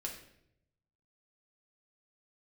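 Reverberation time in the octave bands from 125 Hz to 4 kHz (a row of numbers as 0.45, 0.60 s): 1.3, 0.95, 0.85, 0.65, 0.65, 0.60 s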